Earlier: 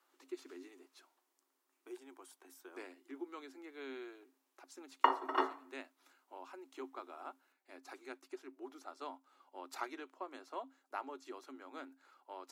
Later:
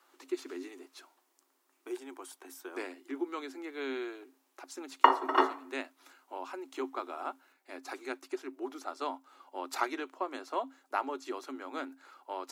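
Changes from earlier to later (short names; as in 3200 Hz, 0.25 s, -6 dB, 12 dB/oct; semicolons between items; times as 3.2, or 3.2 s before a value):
speech +10.0 dB; background +7.5 dB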